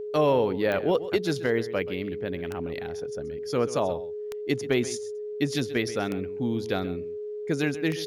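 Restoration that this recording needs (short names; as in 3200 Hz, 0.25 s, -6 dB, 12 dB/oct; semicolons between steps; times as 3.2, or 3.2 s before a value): de-click; notch 420 Hz, Q 30; inverse comb 0.13 s -15.5 dB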